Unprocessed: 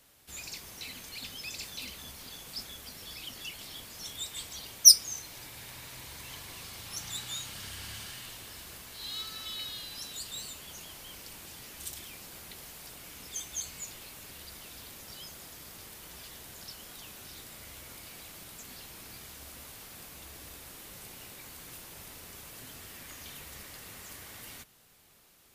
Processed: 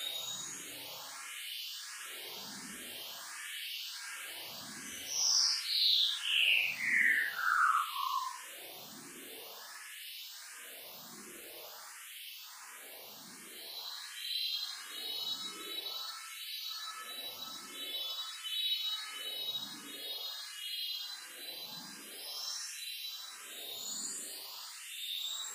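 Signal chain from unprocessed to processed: notches 50/100 Hz; LFO high-pass sine 4 Hz 210–3000 Hz; painted sound fall, 7.97–8.33, 970–6400 Hz -28 dBFS; Paulstretch 8.5×, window 0.10 s, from 7.37; endless phaser +1.4 Hz

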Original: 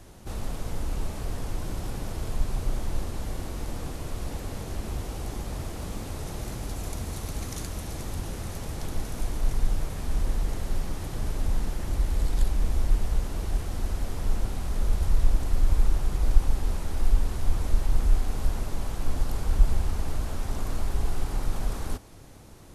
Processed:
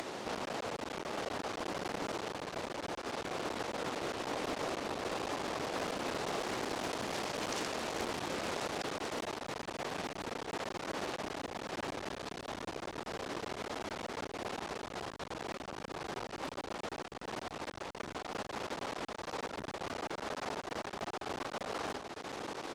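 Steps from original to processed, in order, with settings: in parallel at +1 dB: upward compressor, threshold -22 dBFS; on the sum: soft clip -2.5 dBFS, distortion -21 dB; on a send: feedback echo 1.034 s, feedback 36%, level -9 dB; on the sum: one-sided clip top -25.5 dBFS; limiter -15 dBFS, peak gain reduction 8 dB; BPF 360–4900 Hz; Doppler distortion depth 0.66 ms; gain -2 dB

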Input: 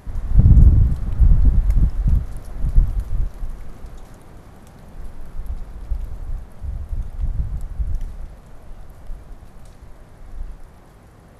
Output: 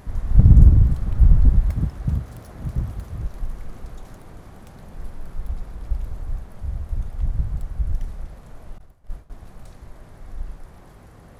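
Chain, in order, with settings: tracing distortion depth 0.058 ms; 1.69–3.25 HPF 81 Hz 12 dB/oct; 8.78–9.3 expander -27 dBFS

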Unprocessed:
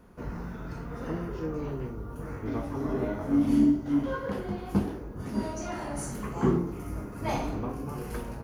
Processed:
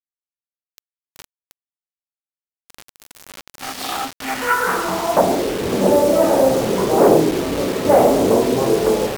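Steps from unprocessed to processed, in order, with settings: AGC gain up to 9.5 dB; sine folder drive 12 dB, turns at -3.5 dBFS; band-pass sweep 7600 Hz -> 540 Hz, 3.13–5.08; bit-crush 5-bit; speed mistake 48 kHz file played as 44.1 kHz; gain +3 dB

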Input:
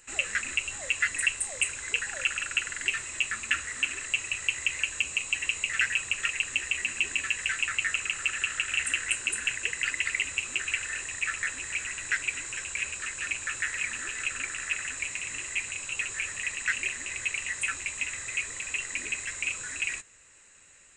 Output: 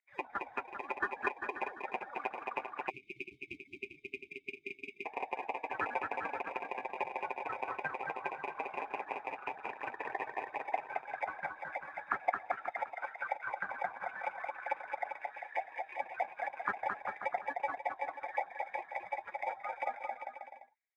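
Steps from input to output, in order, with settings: per-bin expansion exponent 2; mistuned SSB -240 Hz 220–3100 Hz; in parallel at -4.5 dB: sample-and-hold 31×; on the sum: auto-wah 790–2100 Hz, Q 6.1, down, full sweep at -35 dBFS; on a send: bouncing-ball echo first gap 0.22 s, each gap 0.8×, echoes 5; on the sum: spectral delete 2.9–5.06, 410–2100 Hz; gain +12.5 dB

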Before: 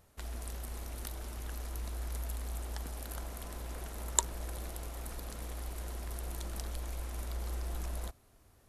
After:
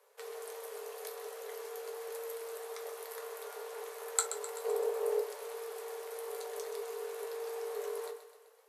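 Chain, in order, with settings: 4.64–5.18 low shelf 430 Hz +12 dB; frequency shift +400 Hz; thinning echo 0.128 s, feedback 57%, high-pass 420 Hz, level -11 dB; reverb, pre-delay 5 ms, DRR 2.5 dB; gain -3.5 dB

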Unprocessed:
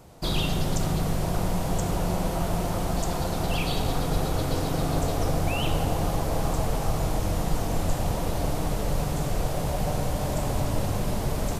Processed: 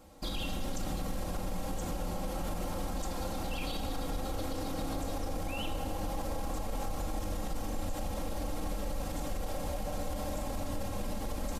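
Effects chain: comb 3.7 ms, depth 81%; limiter -19.5 dBFS, peak gain reduction 11 dB; gain -7 dB

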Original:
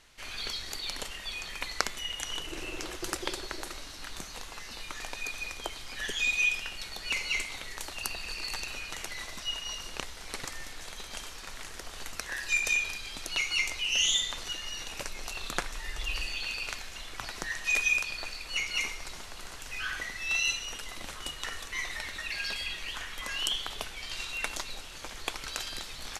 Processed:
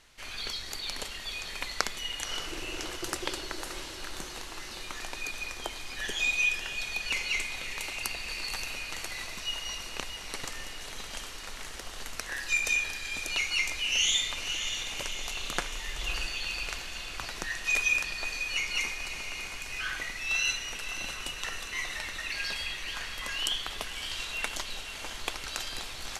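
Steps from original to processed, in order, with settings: diffused feedback echo 0.579 s, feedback 65%, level -9 dB

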